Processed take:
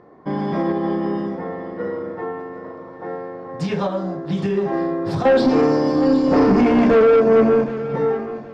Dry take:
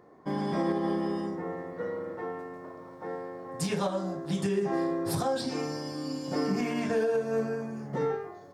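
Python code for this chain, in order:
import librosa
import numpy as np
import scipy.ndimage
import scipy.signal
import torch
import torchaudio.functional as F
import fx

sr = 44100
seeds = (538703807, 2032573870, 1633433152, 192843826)

y = fx.graphic_eq(x, sr, hz=(250, 500, 1000, 2000, 4000, 8000), db=(11, 10, 8, 3, 4, 7), at=(5.25, 7.64))
y = 10.0 ** (-18.0 / 20.0) * np.tanh(y / 10.0 ** (-18.0 / 20.0))
y = fx.air_absorb(y, sr, metres=190.0)
y = fx.echo_feedback(y, sr, ms=766, feedback_pct=27, wet_db=-14.0)
y = F.gain(torch.from_numpy(y), 8.5).numpy()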